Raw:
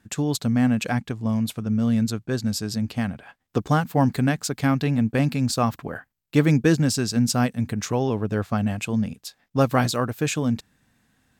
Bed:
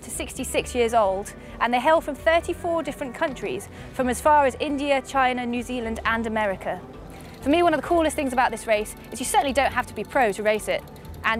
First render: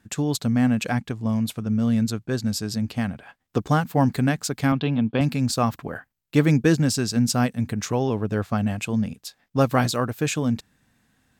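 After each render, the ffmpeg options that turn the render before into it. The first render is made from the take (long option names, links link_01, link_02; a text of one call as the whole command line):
ffmpeg -i in.wav -filter_complex "[0:a]asettb=1/sr,asplit=3[link_01][link_02][link_03];[link_01]atrim=end=4.724[link_04];[link_02]atrim=start=4.72:end=5.21,asetpts=PTS-STARTPTS,afade=type=in:duration=0.004:curve=qsin,afade=type=out:start_time=0.486:duration=0.004:curve=qsin,highpass=120,equalizer=frequency=1000:width_type=q:width=4:gain=3,equalizer=frequency=1900:width_type=q:width=4:gain=-7,equalizer=frequency=3300:width_type=q:width=4:gain=9,lowpass=frequency=3900:width=0.5412,lowpass=frequency=3900:width=1.3066[link_05];[link_03]atrim=start=5.206[link_06];[link_04][link_05]acrossfade=duration=0.004:curve1=hsin:curve2=qsin[link_07];[link_07][link_06]acrossfade=duration=0.004:curve1=qsin:curve2=hsin" out.wav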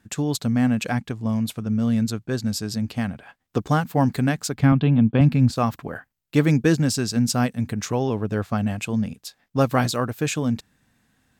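ffmpeg -i in.wav -filter_complex "[0:a]asettb=1/sr,asplit=3[link_01][link_02][link_03];[link_01]atrim=end=4.544[link_04];[link_02]atrim=start=4.54:end=5.56,asetpts=PTS-STARTPTS,afade=type=in:duration=0.004:curve=qsin,afade=type=out:start_time=1.016:duration=0.004:curve=qsin,bass=frequency=250:gain=8,treble=frequency=4000:gain=-11[link_05];[link_03]atrim=start=5.556[link_06];[link_04][link_05]acrossfade=duration=0.004:curve1=hsin:curve2=qsin[link_07];[link_07][link_06]acrossfade=duration=0.004:curve1=qsin:curve2=hsin" out.wav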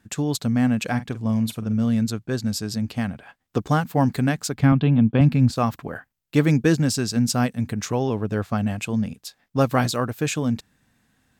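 ffmpeg -i in.wav -filter_complex "[0:a]asettb=1/sr,asplit=3[link_01][link_02][link_03];[link_01]atrim=end=0.874[link_04];[link_02]atrim=start=0.87:end=1.85,asetpts=PTS-STARTPTS,afade=type=in:duration=0.004:curve=qsin,afade=type=out:start_time=0.976:duration=0.004:curve=qsin,asplit=2[link_05][link_06];[link_06]adelay=45,volume=-12.5dB[link_07];[link_05][link_07]amix=inputs=2:normalize=0,atrim=end_sample=43218[link_08];[link_03]atrim=start=1.846[link_09];[link_04][link_08]acrossfade=duration=0.004:curve1=hsin:curve2=qsin[link_10];[link_10][link_09]acrossfade=duration=0.004:curve1=qsin:curve2=hsin" out.wav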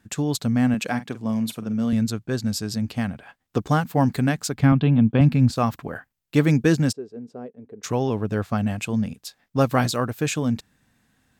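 ffmpeg -i in.wav -filter_complex "[0:a]asettb=1/sr,asplit=3[link_01][link_02][link_03];[link_01]atrim=end=0.744[link_04];[link_02]atrim=start=0.74:end=1.93,asetpts=PTS-STARTPTS,afade=type=in:duration=0.004:curve=qsin,afade=type=out:start_time=1.186:duration=0.004:curve=qsin,highpass=170[link_05];[link_03]atrim=start=1.926[link_06];[link_04][link_05]acrossfade=duration=0.004:curve1=hsin:curve2=qsin[link_07];[link_07][link_06]acrossfade=duration=0.004:curve1=qsin:curve2=hsin,asplit=3[link_08][link_09][link_10];[link_08]afade=type=out:start_time=6.91:duration=0.02[link_11];[link_09]bandpass=frequency=430:width_type=q:width=5.2,afade=type=in:start_time=6.91:duration=0.02,afade=type=out:start_time=7.83:duration=0.02[link_12];[link_10]afade=type=in:start_time=7.83:duration=0.02[link_13];[link_11][link_12][link_13]amix=inputs=3:normalize=0" out.wav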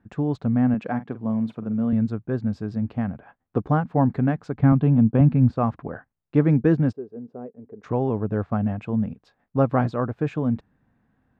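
ffmpeg -i in.wav -af "lowpass=1200" out.wav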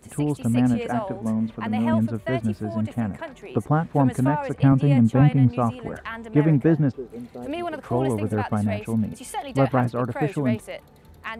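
ffmpeg -i in.wav -i bed.wav -filter_complex "[1:a]volume=-10.5dB[link_01];[0:a][link_01]amix=inputs=2:normalize=0" out.wav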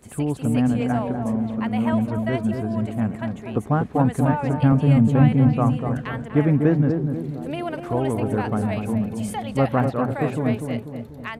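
ffmpeg -i in.wav -filter_complex "[0:a]asplit=2[link_01][link_02];[link_02]adelay=244,lowpass=frequency=1000:poles=1,volume=-5dB,asplit=2[link_03][link_04];[link_04]adelay=244,lowpass=frequency=1000:poles=1,volume=0.52,asplit=2[link_05][link_06];[link_06]adelay=244,lowpass=frequency=1000:poles=1,volume=0.52,asplit=2[link_07][link_08];[link_08]adelay=244,lowpass=frequency=1000:poles=1,volume=0.52,asplit=2[link_09][link_10];[link_10]adelay=244,lowpass=frequency=1000:poles=1,volume=0.52,asplit=2[link_11][link_12];[link_12]adelay=244,lowpass=frequency=1000:poles=1,volume=0.52,asplit=2[link_13][link_14];[link_14]adelay=244,lowpass=frequency=1000:poles=1,volume=0.52[link_15];[link_01][link_03][link_05][link_07][link_09][link_11][link_13][link_15]amix=inputs=8:normalize=0" out.wav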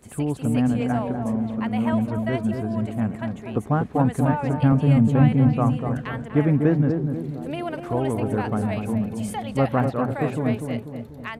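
ffmpeg -i in.wav -af "volume=-1dB" out.wav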